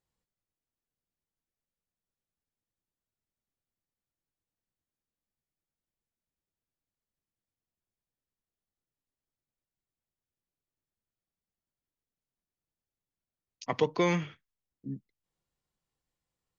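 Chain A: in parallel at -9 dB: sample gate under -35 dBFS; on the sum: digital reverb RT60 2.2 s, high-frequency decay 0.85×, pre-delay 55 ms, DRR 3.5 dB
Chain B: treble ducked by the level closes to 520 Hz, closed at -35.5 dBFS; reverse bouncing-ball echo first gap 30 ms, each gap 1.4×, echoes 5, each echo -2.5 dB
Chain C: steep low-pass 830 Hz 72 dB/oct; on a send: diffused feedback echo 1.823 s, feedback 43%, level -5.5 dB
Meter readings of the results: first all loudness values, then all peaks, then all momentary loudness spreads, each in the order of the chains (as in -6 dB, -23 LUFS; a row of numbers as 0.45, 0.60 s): -29.0, -32.0, -34.5 LUFS; -11.0, -16.5, -15.0 dBFS; 20, 18, 16 LU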